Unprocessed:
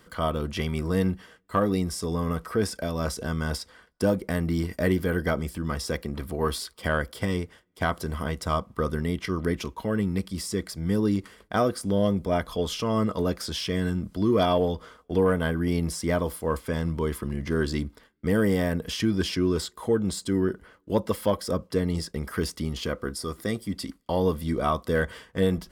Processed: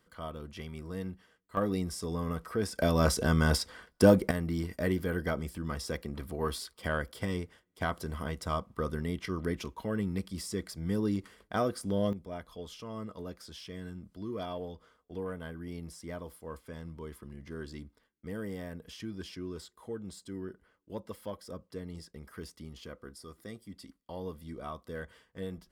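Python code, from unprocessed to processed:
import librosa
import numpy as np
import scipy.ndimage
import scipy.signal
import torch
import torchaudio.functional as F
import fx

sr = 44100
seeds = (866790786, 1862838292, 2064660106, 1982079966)

y = fx.gain(x, sr, db=fx.steps((0.0, -14.0), (1.57, -6.5), (2.78, 3.0), (4.31, -6.5), (12.13, -16.0)))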